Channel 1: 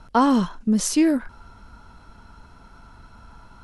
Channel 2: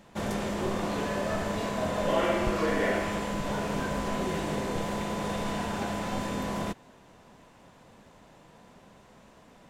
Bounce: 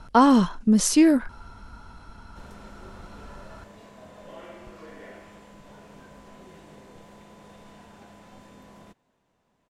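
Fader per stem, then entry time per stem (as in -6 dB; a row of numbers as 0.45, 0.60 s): +1.5, -17.5 dB; 0.00, 2.20 s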